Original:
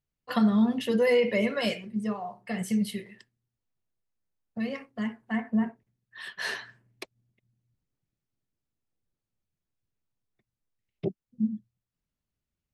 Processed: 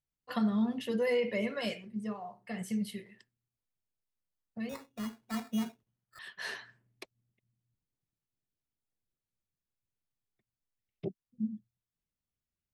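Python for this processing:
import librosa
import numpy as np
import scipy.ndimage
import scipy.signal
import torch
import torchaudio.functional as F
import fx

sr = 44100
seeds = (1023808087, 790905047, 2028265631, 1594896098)

y = fx.sample_hold(x, sr, seeds[0], rate_hz=3100.0, jitter_pct=0, at=(4.69, 6.19))
y = F.gain(torch.from_numpy(y), -7.0).numpy()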